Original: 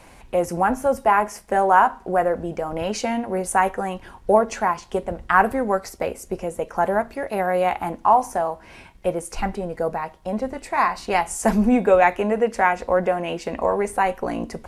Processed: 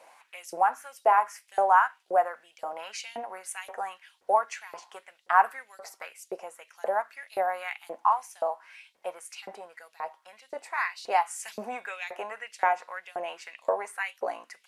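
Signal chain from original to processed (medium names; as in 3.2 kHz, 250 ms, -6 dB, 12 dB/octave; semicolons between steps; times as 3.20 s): LFO high-pass saw up 1.9 Hz 500–4200 Hz; trim -9 dB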